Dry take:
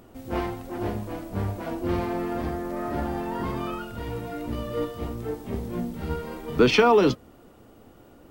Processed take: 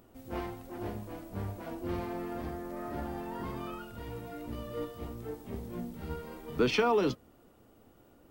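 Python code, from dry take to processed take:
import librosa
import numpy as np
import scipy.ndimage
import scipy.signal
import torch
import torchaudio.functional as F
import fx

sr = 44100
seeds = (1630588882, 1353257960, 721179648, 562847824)

y = fx.high_shelf(x, sr, hz=11000.0, db=5.5)
y = y * librosa.db_to_amplitude(-9.0)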